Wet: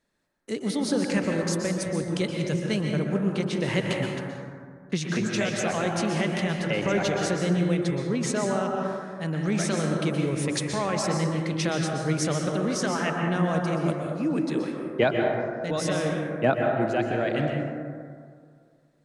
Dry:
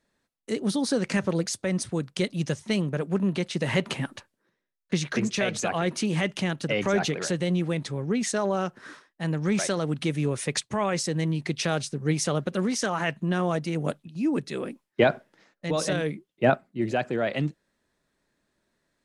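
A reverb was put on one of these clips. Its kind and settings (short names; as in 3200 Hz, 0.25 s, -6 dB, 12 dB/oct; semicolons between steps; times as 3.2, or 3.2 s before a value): plate-style reverb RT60 2.1 s, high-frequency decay 0.3×, pre-delay 0.11 s, DRR 0.5 dB; gain -2 dB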